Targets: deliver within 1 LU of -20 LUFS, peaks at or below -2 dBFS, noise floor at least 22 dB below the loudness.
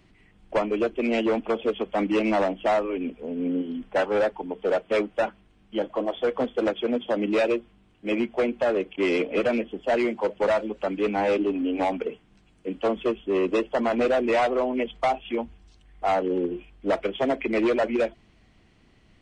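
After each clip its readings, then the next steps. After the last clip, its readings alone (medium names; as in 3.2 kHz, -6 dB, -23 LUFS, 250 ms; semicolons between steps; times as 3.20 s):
loudness -26.0 LUFS; peak level -15.0 dBFS; loudness target -20.0 LUFS
-> trim +6 dB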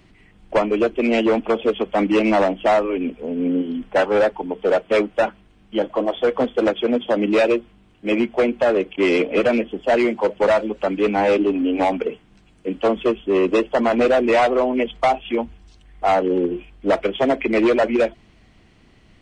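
loudness -20.0 LUFS; peak level -9.0 dBFS; noise floor -53 dBFS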